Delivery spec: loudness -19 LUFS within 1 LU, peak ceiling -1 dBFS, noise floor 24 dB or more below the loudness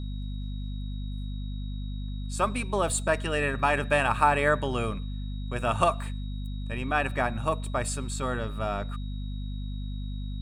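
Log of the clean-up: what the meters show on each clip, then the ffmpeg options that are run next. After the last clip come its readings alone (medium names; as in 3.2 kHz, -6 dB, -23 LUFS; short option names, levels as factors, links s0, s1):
hum 50 Hz; highest harmonic 250 Hz; hum level -31 dBFS; steady tone 3.8 kHz; tone level -51 dBFS; loudness -29.5 LUFS; peak level -8.0 dBFS; loudness target -19.0 LUFS
-> -af "bandreject=f=50:t=h:w=6,bandreject=f=100:t=h:w=6,bandreject=f=150:t=h:w=6,bandreject=f=200:t=h:w=6,bandreject=f=250:t=h:w=6"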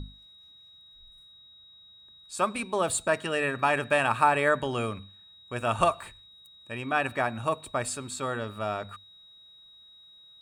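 hum not found; steady tone 3.8 kHz; tone level -51 dBFS
-> -af "bandreject=f=3800:w=30"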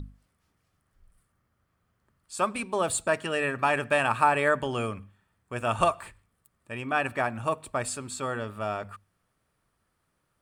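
steady tone not found; loudness -28.0 LUFS; peak level -8.0 dBFS; loudness target -19.0 LUFS
-> -af "volume=2.82,alimiter=limit=0.891:level=0:latency=1"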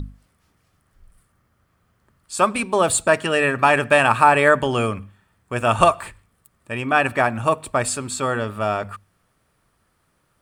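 loudness -19.0 LUFS; peak level -1.0 dBFS; noise floor -67 dBFS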